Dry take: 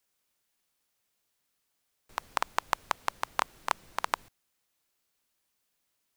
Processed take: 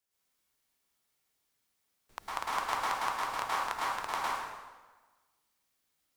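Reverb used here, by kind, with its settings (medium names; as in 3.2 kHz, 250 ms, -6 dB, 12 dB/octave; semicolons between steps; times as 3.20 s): plate-style reverb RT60 1.3 s, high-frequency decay 0.8×, pre-delay 95 ms, DRR -8 dB; trim -8.5 dB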